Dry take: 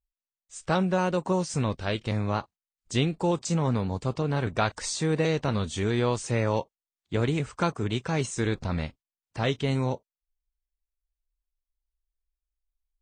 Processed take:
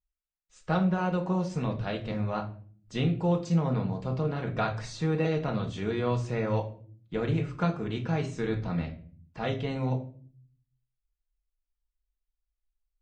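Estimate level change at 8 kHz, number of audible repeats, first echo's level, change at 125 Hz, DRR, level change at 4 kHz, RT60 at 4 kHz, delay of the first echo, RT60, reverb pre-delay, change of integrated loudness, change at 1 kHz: -14.5 dB, no echo, no echo, -1.0 dB, 1.5 dB, -7.5 dB, 0.35 s, no echo, 0.50 s, 4 ms, -2.0 dB, -3.0 dB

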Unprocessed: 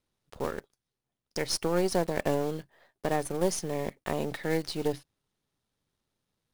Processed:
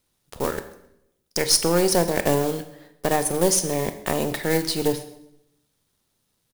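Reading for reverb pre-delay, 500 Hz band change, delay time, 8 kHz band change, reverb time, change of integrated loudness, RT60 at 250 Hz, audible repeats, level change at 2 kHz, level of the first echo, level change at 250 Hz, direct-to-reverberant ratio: 20 ms, +7.0 dB, 132 ms, +14.0 dB, 0.80 s, +9.0 dB, 0.95 s, 2, +8.0 dB, -21.5 dB, +7.0 dB, 9.5 dB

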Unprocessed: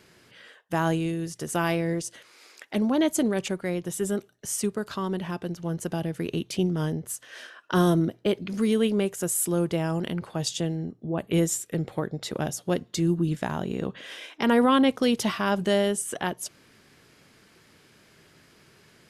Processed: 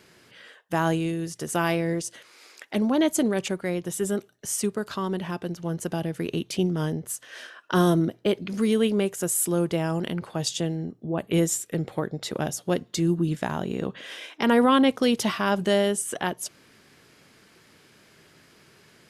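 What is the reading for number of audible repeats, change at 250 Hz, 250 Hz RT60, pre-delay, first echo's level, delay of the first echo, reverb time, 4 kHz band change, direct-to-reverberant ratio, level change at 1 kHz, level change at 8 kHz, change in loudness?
no echo, +0.5 dB, no reverb, no reverb, no echo, no echo, no reverb, +1.5 dB, no reverb, +1.5 dB, +1.5 dB, +1.0 dB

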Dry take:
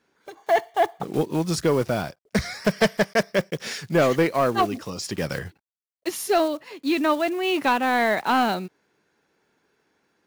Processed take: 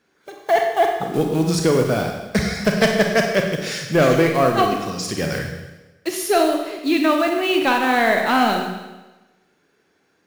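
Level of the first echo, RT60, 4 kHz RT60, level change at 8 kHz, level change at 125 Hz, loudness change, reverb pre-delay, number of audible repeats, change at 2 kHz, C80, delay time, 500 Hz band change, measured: no echo, 1.1 s, 1.1 s, +5.0 dB, +5.5 dB, +4.5 dB, 29 ms, no echo, +5.0 dB, 6.0 dB, no echo, +4.5 dB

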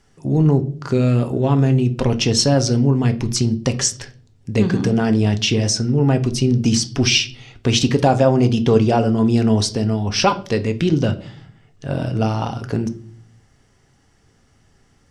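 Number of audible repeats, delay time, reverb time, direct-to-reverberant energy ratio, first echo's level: no echo, no echo, 0.45 s, 8.0 dB, no echo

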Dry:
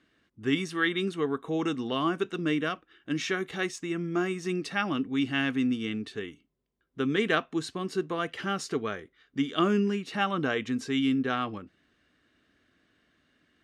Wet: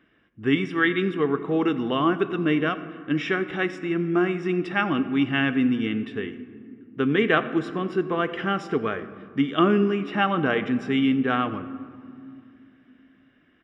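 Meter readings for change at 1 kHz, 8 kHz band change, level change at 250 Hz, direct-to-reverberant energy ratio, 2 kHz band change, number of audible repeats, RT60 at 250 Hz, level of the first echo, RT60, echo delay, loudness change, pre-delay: +6.0 dB, under -10 dB, +6.0 dB, 11.5 dB, +5.5 dB, 1, 3.6 s, -20.5 dB, 2.3 s, 89 ms, +5.5 dB, 3 ms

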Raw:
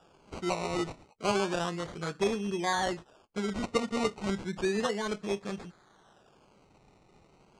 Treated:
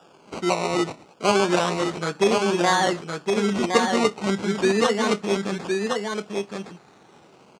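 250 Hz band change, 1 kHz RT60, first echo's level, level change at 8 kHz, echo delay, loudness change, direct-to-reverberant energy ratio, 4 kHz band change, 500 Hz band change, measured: +9.5 dB, no reverb, -4.0 dB, +10.5 dB, 1064 ms, +9.5 dB, no reverb, +10.5 dB, +10.5 dB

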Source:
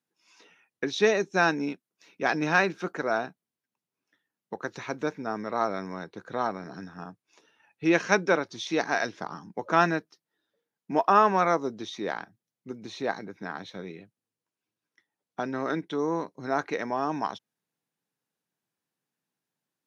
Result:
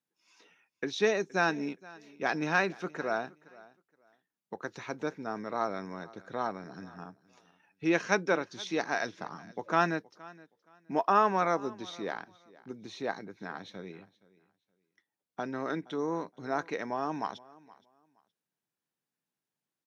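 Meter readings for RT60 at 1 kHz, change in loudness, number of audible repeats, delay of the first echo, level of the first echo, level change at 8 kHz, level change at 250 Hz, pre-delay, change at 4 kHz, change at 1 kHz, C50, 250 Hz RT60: no reverb, -4.5 dB, 1, 470 ms, -22.0 dB, no reading, -4.5 dB, no reverb, -4.5 dB, -4.5 dB, no reverb, no reverb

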